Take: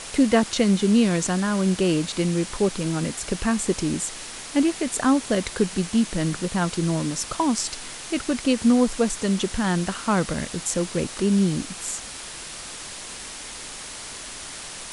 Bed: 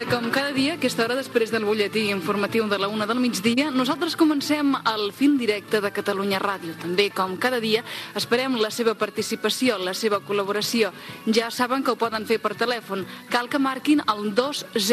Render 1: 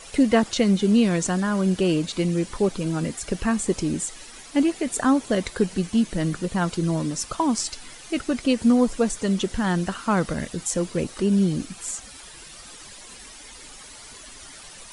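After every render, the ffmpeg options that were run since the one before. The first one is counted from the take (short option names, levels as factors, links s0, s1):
-af "afftdn=nr=11:nf=-37"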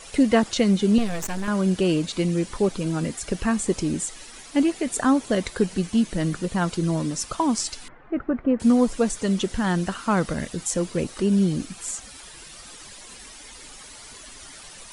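-filter_complex "[0:a]asettb=1/sr,asplit=3[s0][s1][s2];[s0]atrim=end=0.984[s3];[s1]atrim=start=0.98:end=1.48,asetpts=PTS-STARTPTS,afade=t=in:d=0.004:c=qsin,afade=t=out:st=0.496:d=0.004:c=qsin,aeval=exprs='max(val(0),0)':c=same[s4];[s2]atrim=start=1.476[s5];[s3][s4]acrossfade=d=0.004:c1=hsin:c2=qsin[s6];[s6][s5]acrossfade=d=0.004:c1=qsin:c2=hsin,asettb=1/sr,asplit=3[s7][s8][s9];[s7]atrim=end=7.884[s10];[s8]atrim=start=7.88:end=8.6,asetpts=PTS-STARTPTS,afade=t=in:d=0.004:c=qsin,afade=t=out:st=0.716:d=0.004:c=qsin,lowpass=f=1600:w=0.5412,lowpass=f=1600:w=1.3066[s11];[s9]atrim=start=8.596[s12];[s10][s11]acrossfade=d=0.004:c1=hsin:c2=qsin[s13];[s13][s12]acrossfade=d=0.004:c1=qsin:c2=hsin"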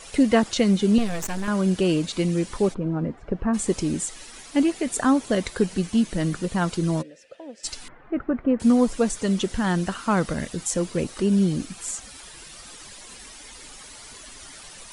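-filter_complex "[0:a]asplit=3[s0][s1][s2];[s0]afade=t=out:st=2.73:d=0.02[s3];[s1]lowpass=1100,afade=t=in:st=2.73:d=0.02,afade=t=out:st=3.53:d=0.02[s4];[s2]afade=t=in:st=3.53:d=0.02[s5];[s3][s4][s5]amix=inputs=3:normalize=0,asplit=3[s6][s7][s8];[s6]afade=t=out:st=7.01:d=0.02[s9];[s7]asplit=3[s10][s11][s12];[s10]bandpass=f=530:t=q:w=8,volume=1[s13];[s11]bandpass=f=1840:t=q:w=8,volume=0.501[s14];[s12]bandpass=f=2480:t=q:w=8,volume=0.355[s15];[s13][s14][s15]amix=inputs=3:normalize=0,afade=t=in:st=7.01:d=0.02,afade=t=out:st=7.63:d=0.02[s16];[s8]afade=t=in:st=7.63:d=0.02[s17];[s9][s16][s17]amix=inputs=3:normalize=0"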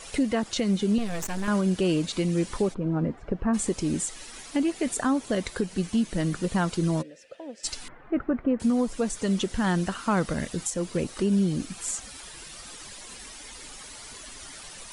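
-af "alimiter=limit=0.158:level=0:latency=1:release=332"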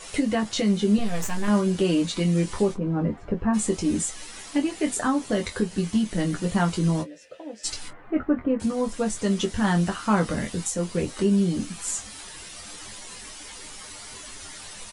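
-filter_complex "[0:a]asplit=2[s0][s1];[s1]adelay=24,volume=0.224[s2];[s0][s2]amix=inputs=2:normalize=0,aecho=1:1:10|23:0.596|0.501"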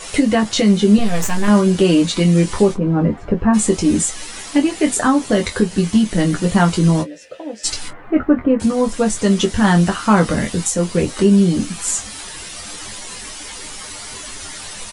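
-af "volume=2.82,alimiter=limit=0.794:level=0:latency=1"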